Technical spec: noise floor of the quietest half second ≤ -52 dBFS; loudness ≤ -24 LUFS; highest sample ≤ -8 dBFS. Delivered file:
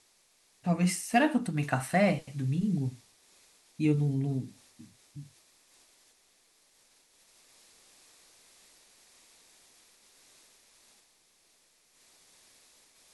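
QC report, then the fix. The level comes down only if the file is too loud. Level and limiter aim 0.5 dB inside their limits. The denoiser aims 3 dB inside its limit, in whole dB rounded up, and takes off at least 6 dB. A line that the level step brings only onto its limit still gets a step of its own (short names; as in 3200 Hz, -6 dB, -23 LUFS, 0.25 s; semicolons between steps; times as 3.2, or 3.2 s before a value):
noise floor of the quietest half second -67 dBFS: OK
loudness -29.5 LUFS: OK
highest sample -12.5 dBFS: OK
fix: none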